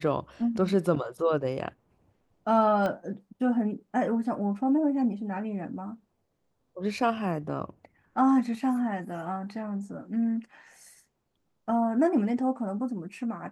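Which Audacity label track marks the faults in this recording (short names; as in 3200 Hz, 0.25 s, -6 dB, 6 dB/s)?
2.860000	2.860000	pop -19 dBFS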